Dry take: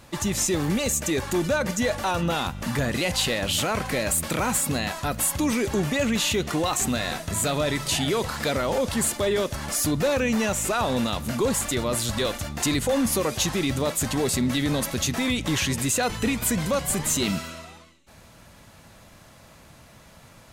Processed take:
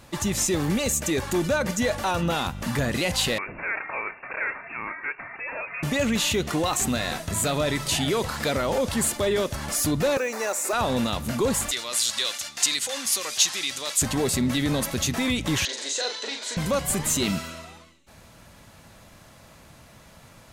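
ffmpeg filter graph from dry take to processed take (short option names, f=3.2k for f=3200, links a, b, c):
-filter_complex "[0:a]asettb=1/sr,asplit=3[a][b][c];[a]atrim=end=3.384[d];[b]atrim=start=3.38:end=5.83,asetpts=PTS-STARTPTS,afade=t=in:d=0.004:c=qsin,afade=t=out:st=2.446:d=0.004:c=qsin,highpass=700,lowpass=f=2.5k:t=q:w=0.5098,lowpass=f=2.5k:t=q:w=0.6013,lowpass=f=2.5k:t=q:w=0.9,lowpass=f=2.5k:t=q:w=2.563,afreqshift=-2900[e];[c]atrim=start=5.826[f];[d][e]acrossfade=d=0.004:c1=hsin:c2=qsin[g];[g][f]acrossfade=d=0.004:c1=qsin:c2=hsin,asettb=1/sr,asplit=3[h][i][j];[h]atrim=end=10.174[k];[i]atrim=start=10.17:end=10.73,asetpts=PTS-STARTPTS,afade=t=in:d=0.004:c=qsin,afade=t=out:st=0.556:d=0.004:c=qsin,highpass=f=360:w=0.5412,highpass=f=360:w=1.3066,equalizer=f=3.1k:w=3.8:g=-14,acrusher=bits=6:mode=log:mix=0:aa=0.000001[l];[j]atrim=start=10.726[m];[k][l]acrossfade=d=0.004:c1=hsin:c2=qsin[n];[n][m]acrossfade=d=0.004:c1=qsin:c2=hsin,asettb=1/sr,asplit=3[o][p][q];[o]atrim=end=11.714[r];[p]atrim=start=11.71:end=14.02,asetpts=PTS-STARTPTS,afade=t=in:d=0.004:c=qsin,afade=t=out:st=2.306:d=0.004:c=qsin,acontrast=85,bandpass=f=5.4k:t=q:w=0.81[s];[q]atrim=start=14.016[t];[r][s]acrossfade=d=0.004:c1=hsin:c2=qsin[u];[u][t]acrossfade=d=0.004:c1=qsin:c2=hsin,asettb=1/sr,asplit=3[v][w][x];[v]atrim=end=15.654[y];[w]atrim=start=15.65:end=16.57,asetpts=PTS-STARTPTS,afade=t=in:d=0.004:c=qsin,afade=t=out:st=0.916:d=0.004:c=qsin,asoftclip=type=hard:threshold=-23.5dB,highpass=f=440:w=0.5412,highpass=f=440:w=1.3066,equalizer=f=750:t=q:w=4:g=-9,equalizer=f=1.2k:t=q:w=4:g=-10,equalizer=f=2.5k:t=q:w=4:g=-6,equalizer=f=4k:t=q:w=4:g=9,equalizer=f=6.2k:t=q:w=4:g=3,lowpass=f=6.9k:w=0.5412,lowpass=f=6.9k:w=1.3066,asplit=2[z][aa];[aa]adelay=40,volume=-5dB[ab];[z][ab]amix=inputs=2:normalize=0,atrim=end_sample=40572[ac];[x]atrim=start=16.566[ad];[y][ac]acrossfade=d=0.004:c1=hsin:c2=qsin[ae];[ae][ad]acrossfade=d=0.004:c1=qsin:c2=hsin"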